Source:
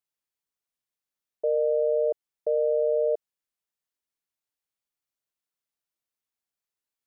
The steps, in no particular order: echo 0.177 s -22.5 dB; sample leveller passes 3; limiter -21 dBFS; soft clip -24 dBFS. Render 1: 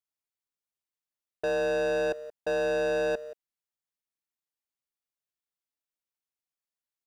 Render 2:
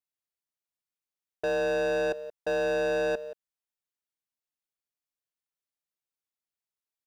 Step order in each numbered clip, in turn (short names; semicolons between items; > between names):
limiter > soft clip > echo > sample leveller; limiter > echo > sample leveller > soft clip